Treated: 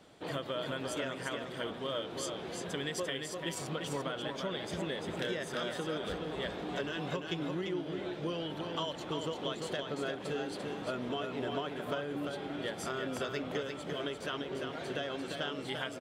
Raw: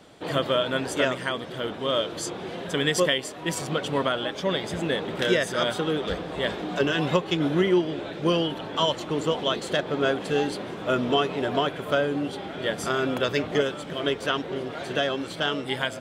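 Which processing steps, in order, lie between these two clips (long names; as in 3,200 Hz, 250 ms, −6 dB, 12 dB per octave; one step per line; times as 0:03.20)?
downward compressor, threshold −26 dBFS, peak gain reduction 9.5 dB
single-tap delay 345 ms −5 dB
level −7.5 dB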